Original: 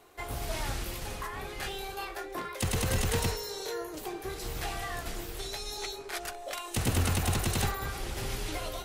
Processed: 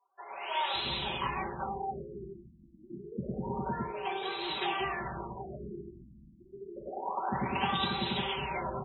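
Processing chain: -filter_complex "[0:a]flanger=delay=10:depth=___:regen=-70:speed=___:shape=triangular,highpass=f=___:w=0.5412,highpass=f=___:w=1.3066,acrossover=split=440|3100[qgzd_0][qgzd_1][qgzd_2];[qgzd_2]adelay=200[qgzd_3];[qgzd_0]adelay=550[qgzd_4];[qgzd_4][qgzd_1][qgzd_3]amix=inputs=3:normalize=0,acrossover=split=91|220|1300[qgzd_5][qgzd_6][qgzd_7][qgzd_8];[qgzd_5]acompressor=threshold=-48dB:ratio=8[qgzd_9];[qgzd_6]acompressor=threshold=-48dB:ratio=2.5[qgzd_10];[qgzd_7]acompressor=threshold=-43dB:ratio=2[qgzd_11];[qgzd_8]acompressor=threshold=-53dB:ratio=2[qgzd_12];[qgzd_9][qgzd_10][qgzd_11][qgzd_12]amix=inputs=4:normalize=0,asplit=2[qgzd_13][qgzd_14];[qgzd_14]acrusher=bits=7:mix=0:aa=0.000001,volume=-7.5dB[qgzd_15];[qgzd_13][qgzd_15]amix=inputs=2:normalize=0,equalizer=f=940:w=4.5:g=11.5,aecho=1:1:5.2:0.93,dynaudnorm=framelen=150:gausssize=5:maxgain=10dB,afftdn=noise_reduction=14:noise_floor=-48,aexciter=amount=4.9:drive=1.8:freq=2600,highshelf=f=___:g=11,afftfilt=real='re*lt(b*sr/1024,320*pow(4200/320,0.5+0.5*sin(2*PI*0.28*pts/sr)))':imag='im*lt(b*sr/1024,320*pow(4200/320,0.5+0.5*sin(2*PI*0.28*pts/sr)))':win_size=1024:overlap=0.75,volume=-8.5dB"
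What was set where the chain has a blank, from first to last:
6.8, 0.53, 72, 72, 3100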